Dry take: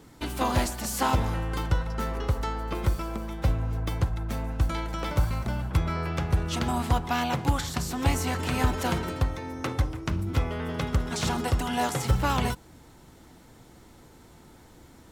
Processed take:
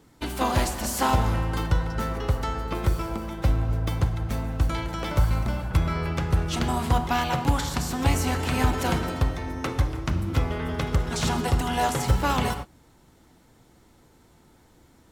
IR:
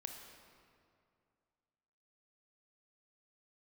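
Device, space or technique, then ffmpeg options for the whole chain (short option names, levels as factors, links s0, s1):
keyed gated reverb: -filter_complex "[0:a]asplit=3[s0][s1][s2];[1:a]atrim=start_sample=2205[s3];[s1][s3]afir=irnorm=-1:irlink=0[s4];[s2]apad=whole_len=666712[s5];[s4][s5]sidechaingate=range=0.0224:threshold=0.0112:ratio=16:detection=peak,volume=2[s6];[s0][s6]amix=inputs=2:normalize=0,volume=0.562"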